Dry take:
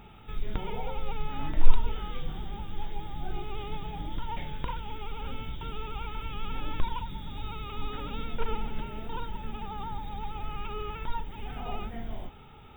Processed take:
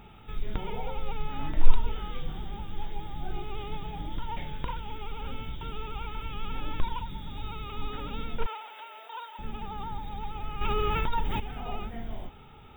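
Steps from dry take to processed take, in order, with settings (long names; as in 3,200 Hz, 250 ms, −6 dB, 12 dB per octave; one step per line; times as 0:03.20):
0:08.46–0:09.39: high-pass filter 600 Hz 24 dB per octave
0:10.61–0:11.40: envelope flattener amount 70%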